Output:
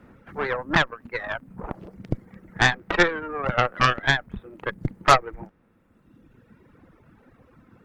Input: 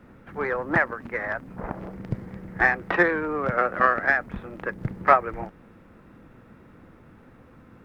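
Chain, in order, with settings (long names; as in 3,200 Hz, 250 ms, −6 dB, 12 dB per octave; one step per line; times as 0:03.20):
reverb reduction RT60 1.9 s
harmonic generator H 8 −15 dB, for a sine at −1.5 dBFS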